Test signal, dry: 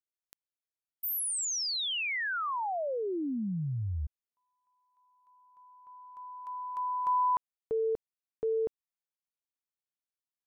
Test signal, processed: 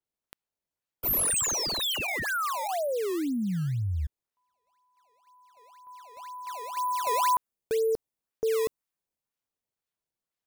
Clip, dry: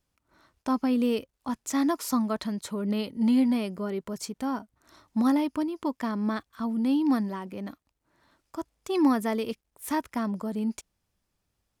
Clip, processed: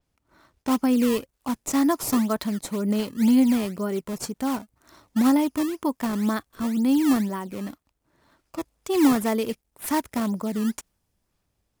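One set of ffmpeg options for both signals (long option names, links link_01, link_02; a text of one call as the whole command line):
ffmpeg -i in.wav -filter_complex "[0:a]asplit=2[link_01][link_02];[link_02]acrusher=samples=17:mix=1:aa=0.000001:lfo=1:lforange=27.2:lforate=2,volume=-4dB[link_03];[link_01][link_03]amix=inputs=2:normalize=0,adynamicequalizer=threshold=0.00316:dfrequency=6400:dqfactor=0.7:tfrequency=6400:tqfactor=0.7:attack=5:release=100:ratio=0.375:range=3.5:mode=boostabove:tftype=highshelf" out.wav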